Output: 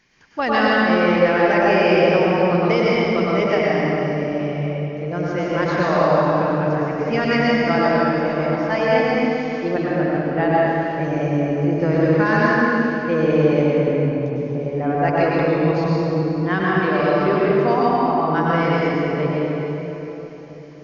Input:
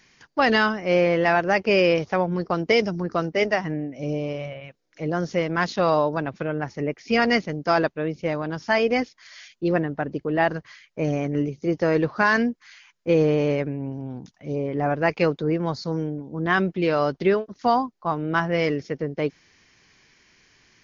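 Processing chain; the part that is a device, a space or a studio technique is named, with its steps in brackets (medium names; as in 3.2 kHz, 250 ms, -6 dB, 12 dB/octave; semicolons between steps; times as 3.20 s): swimming-pool hall (reverberation RT60 3.9 s, pre-delay 94 ms, DRR -7 dB; treble shelf 4.2 kHz -7 dB); trim -2.5 dB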